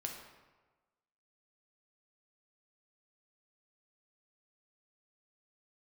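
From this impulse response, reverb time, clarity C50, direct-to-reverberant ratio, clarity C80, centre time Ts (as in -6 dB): 1.3 s, 4.5 dB, 1.0 dB, 6.5 dB, 41 ms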